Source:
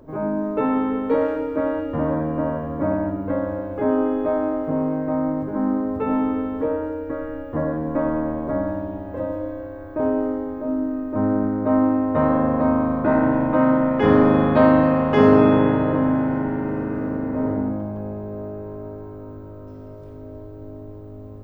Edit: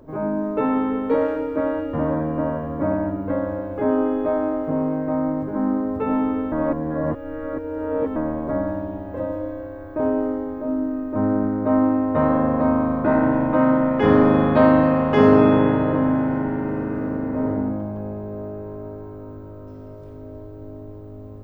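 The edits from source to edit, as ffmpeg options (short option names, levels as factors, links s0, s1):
-filter_complex "[0:a]asplit=3[s0][s1][s2];[s0]atrim=end=6.522[s3];[s1]atrim=start=6.518:end=8.162,asetpts=PTS-STARTPTS,areverse[s4];[s2]atrim=start=8.158[s5];[s3][s4]acrossfade=d=0.004:c1=hsin:c2=hsin[s6];[s6][s5]acrossfade=d=0.004:c1=hsin:c2=hsin"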